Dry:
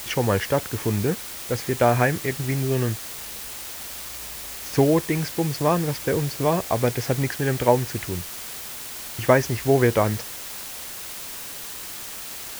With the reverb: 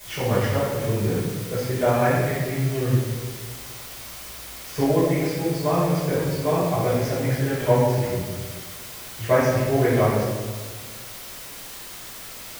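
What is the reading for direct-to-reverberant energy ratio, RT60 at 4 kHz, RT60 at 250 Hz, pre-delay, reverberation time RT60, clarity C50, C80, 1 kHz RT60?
-13.0 dB, 0.95 s, 1.8 s, 5 ms, 1.5 s, -1.5 dB, 1.5 dB, 1.3 s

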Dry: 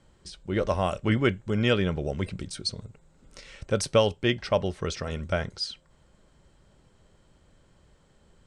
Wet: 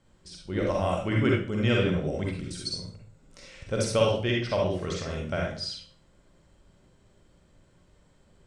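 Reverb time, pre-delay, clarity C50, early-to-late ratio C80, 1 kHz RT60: 0.45 s, 40 ms, 1.0 dB, 7.0 dB, 0.45 s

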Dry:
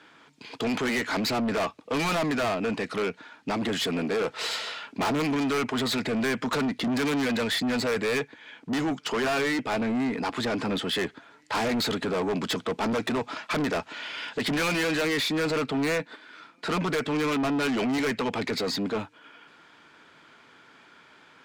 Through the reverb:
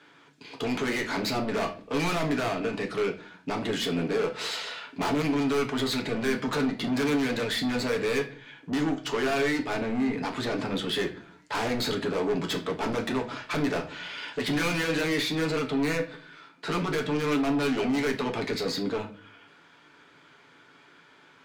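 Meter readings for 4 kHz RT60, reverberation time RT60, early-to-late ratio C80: 0.40 s, 0.45 s, 17.5 dB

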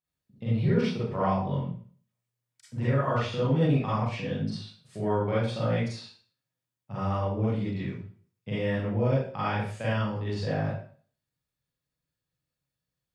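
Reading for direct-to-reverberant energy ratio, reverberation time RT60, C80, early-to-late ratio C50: -10.5 dB, 0.45 s, 4.5 dB, -1.0 dB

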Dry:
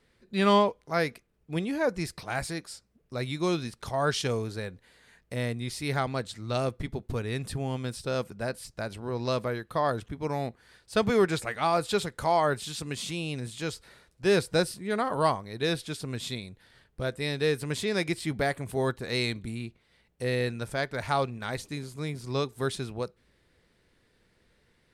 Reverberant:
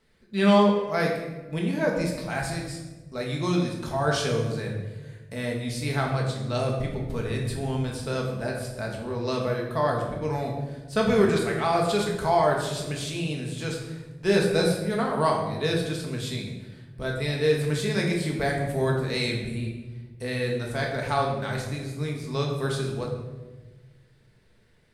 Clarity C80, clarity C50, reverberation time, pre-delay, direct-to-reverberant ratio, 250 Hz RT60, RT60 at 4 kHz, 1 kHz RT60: 6.0 dB, 4.0 dB, 1.3 s, 4 ms, -1.0 dB, 1.8 s, 0.80 s, 1.0 s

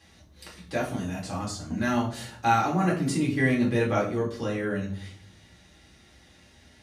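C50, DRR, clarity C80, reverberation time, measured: 8.0 dB, -4.0 dB, 12.0 dB, 0.55 s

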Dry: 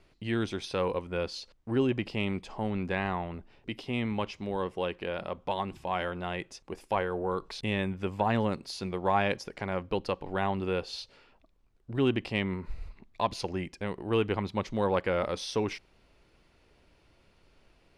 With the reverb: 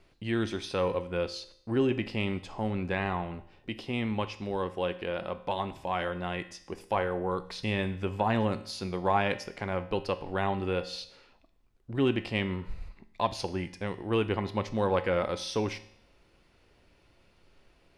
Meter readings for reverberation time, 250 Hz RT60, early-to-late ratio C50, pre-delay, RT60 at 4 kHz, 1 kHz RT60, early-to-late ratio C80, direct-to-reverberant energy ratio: 0.65 s, 0.65 s, 15.0 dB, 4 ms, 0.65 s, 0.65 s, 17.5 dB, 10.0 dB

